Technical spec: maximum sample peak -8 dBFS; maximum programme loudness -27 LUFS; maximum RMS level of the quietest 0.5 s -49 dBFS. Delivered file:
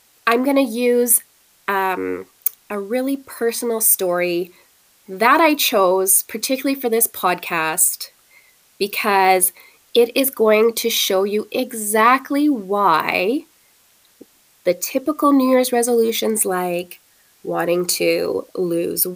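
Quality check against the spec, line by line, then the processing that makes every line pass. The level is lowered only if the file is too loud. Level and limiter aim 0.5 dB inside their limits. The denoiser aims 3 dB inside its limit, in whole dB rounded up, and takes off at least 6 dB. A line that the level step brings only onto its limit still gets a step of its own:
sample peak -2.0 dBFS: fail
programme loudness -17.5 LUFS: fail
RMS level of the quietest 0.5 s -56 dBFS: pass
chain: trim -10 dB

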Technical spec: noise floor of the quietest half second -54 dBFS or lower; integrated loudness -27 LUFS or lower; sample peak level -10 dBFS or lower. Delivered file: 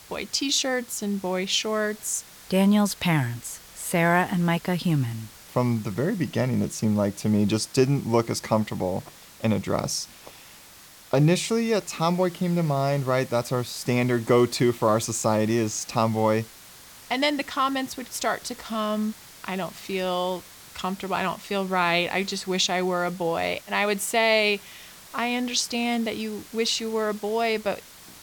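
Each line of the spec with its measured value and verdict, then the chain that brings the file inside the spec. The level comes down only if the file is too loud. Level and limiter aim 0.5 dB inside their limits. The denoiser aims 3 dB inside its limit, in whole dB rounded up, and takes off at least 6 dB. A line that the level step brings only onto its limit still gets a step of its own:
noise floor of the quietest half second -49 dBFS: fail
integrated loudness -25.0 LUFS: fail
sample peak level -7.5 dBFS: fail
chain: noise reduction 6 dB, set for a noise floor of -49 dBFS; trim -2.5 dB; peak limiter -10.5 dBFS

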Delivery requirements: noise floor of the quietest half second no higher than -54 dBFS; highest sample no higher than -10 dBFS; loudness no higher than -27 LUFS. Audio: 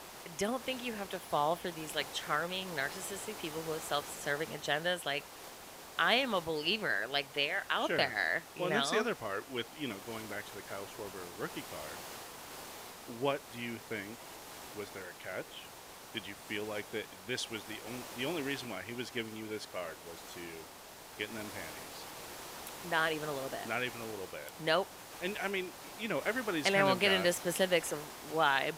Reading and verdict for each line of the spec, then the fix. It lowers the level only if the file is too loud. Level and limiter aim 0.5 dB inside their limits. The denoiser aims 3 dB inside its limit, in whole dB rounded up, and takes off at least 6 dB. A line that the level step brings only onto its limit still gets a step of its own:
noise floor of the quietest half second -51 dBFS: fail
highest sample -14.5 dBFS: pass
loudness -35.5 LUFS: pass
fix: noise reduction 6 dB, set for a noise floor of -51 dBFS

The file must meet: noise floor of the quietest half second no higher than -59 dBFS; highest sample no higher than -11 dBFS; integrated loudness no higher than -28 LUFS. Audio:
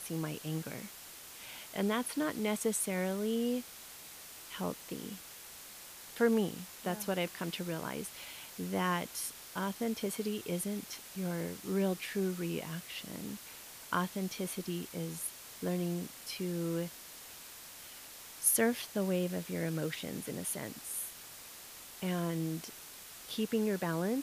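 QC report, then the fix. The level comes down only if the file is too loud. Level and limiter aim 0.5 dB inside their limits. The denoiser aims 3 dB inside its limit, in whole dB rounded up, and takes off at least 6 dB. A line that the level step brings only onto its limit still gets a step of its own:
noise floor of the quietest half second -50 dBFS: fail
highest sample -14.5 dBFS: pass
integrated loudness -36.0 LUFS: pass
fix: noise reduction 12 dB, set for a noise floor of -50 dBFS

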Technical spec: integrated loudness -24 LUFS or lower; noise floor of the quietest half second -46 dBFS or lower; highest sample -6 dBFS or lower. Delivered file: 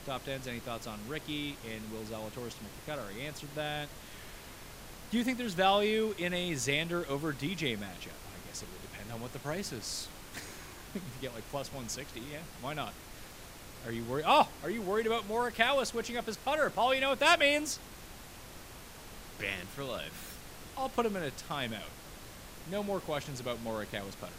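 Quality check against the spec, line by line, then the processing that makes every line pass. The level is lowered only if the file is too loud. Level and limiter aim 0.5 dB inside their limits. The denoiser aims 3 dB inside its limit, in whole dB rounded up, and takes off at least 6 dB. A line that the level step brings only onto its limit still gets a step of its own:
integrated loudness -34.0 LUFS: pass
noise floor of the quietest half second -49 dBFS: pass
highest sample -10.5 dBFS: pass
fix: none needed

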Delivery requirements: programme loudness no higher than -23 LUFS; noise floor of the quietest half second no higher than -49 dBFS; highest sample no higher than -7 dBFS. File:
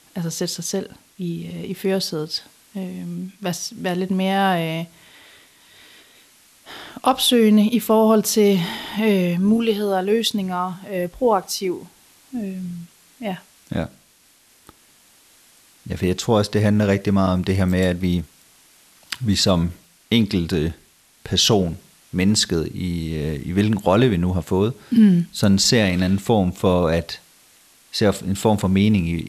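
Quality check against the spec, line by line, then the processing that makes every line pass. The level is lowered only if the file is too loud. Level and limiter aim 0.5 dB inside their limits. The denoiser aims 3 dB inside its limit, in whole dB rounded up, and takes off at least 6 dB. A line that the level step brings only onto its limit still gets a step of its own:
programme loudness -20.0 LUFS: fail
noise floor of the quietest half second -56 dBFS: pass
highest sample -3.5 dBFS: fail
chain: trim -3.5 dB; peak limiter -7.5 dBFS

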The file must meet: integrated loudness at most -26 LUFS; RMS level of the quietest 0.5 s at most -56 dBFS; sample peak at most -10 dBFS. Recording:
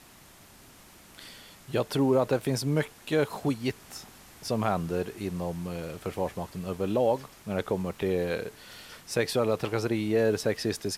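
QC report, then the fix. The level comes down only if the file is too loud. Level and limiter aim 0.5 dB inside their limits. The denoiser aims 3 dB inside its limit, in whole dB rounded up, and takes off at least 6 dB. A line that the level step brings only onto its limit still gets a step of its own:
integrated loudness -29.5 LUFS: pass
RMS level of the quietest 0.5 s -53 dBFS: fail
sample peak -13.0 dBFS: pass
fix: noise reduction 6 dB, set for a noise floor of -53 dBFS

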